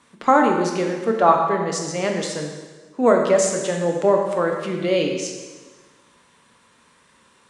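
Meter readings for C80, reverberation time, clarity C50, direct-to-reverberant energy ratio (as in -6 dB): 5.5 dB, 1.4 s, 4.0 dB, 1.5 dB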